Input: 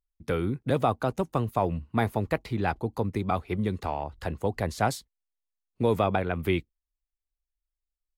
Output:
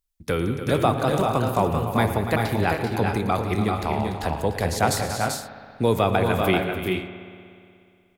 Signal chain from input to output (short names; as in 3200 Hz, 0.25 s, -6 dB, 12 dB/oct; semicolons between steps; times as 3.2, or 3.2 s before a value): high shelf 3200 Hz +8.5 dB; tapped delay 0.113/0.178/0.291/0.388/0.415/0.468 s -16.5/-14/-11.5/-5/-8.5/-14.5 dB; spring tank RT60 2.4 s, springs 60 ms, chirp 75 ms, DRR 10.5 dB; gain +3 dB